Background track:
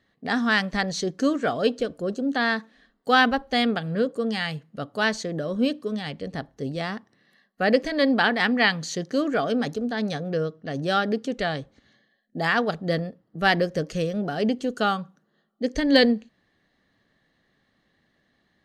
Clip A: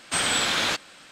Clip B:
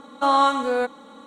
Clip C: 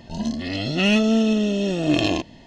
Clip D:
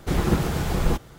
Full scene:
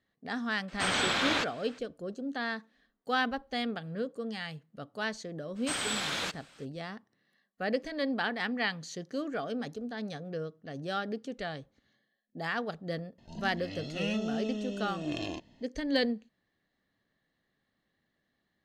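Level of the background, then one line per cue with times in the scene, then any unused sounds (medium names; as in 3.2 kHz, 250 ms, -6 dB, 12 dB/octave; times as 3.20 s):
background track -11 dB
0.68 s: add A -2.5 dB + peaking EQ 12 kHz -13.5 dB 1.7 oct
5.55 s: add A -9.5 dB, fades 0.02 s
13.18 s: add C -15.5 dB
not used: B, D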